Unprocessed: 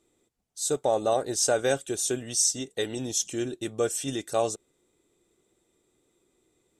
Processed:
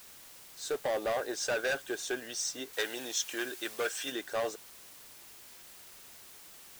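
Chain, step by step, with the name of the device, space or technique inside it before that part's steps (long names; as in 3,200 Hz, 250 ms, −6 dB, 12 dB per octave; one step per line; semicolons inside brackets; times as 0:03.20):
drive-through speaker (band-pass filter 390–4,000 Hz; parametric band 1,600 Hz +12 dB 0.27 octaves; hard clipping −26 dBFS, distortion −7 dB; white noise bed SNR 15 dB)
0:02.73–0:04.12: tilt shelving filter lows −5 dB, about 660 Hz
level −1.5 dB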